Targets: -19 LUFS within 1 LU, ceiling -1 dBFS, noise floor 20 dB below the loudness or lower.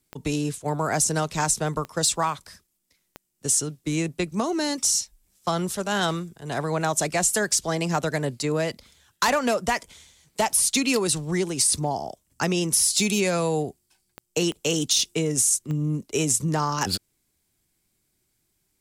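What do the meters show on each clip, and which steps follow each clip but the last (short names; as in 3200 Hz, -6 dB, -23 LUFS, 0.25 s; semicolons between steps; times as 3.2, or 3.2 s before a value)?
clicks 6; loudness -24.0 LUFS; peak -10.5 dBFS; loudness target -19.0 LUFS
-> de-click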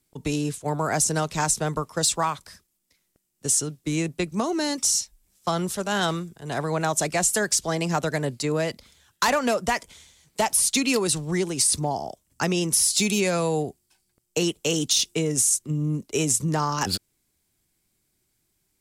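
clicks 0; loudness -24.0 LUFS; peak -10.5 dBFS; loudness target -19.0 LUFS
-> gain +5 dB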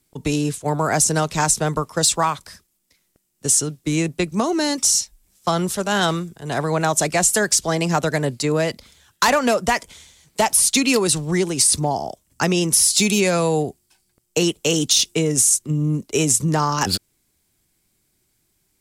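loudness -19.0 LUFS; peak -5.5 dBFS; noise floor -68 dBFS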